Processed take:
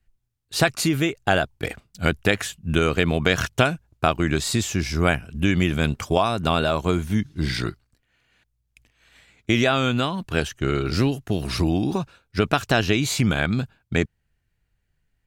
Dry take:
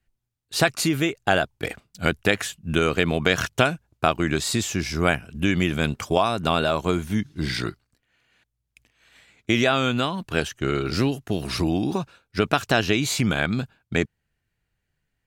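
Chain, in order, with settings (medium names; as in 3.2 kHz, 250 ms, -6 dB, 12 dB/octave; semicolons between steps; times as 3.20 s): bass shelf 83 Hz +10 dB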